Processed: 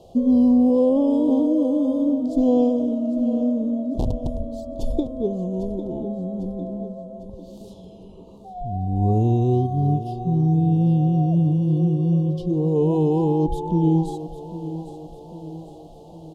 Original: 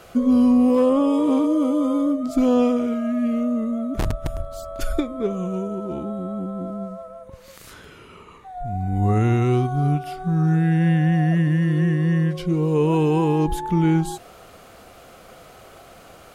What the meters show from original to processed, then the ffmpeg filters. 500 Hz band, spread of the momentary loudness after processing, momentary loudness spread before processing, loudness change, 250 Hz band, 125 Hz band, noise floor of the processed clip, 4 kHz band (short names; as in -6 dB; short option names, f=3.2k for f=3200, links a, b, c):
0.0 dB, 16 LU, 12 LU, 0.0 dB, 0.0 dB, 0.0 dB, -43 dBFS, n/a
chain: -filter_complex "[0:a]asuperstop=centerf=1700:order=8:qfactor=0.71,aemphasis=mode=reproduction:type=75kf,asplit=2[a][b];[b]aecho=0:1:801|1602|2403|3204|4005:0.224|0.116|0.0605|0.0315|0.0164[c];[a][c]amix=inputs=2:normalize=0"